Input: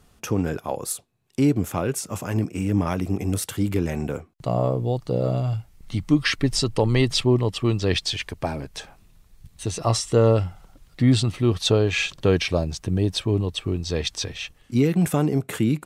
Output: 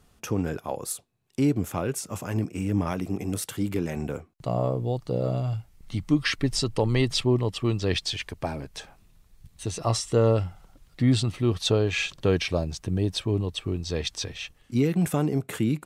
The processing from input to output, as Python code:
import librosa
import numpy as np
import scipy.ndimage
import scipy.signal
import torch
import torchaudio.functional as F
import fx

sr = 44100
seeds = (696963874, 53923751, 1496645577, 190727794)

y = fx.peak_eq(x, sr, hz=82.0, db=-8.0, octaves=0.5, at=(2.91, 3.97))
y = y * 10.0 ** (-3.5 / 20.0)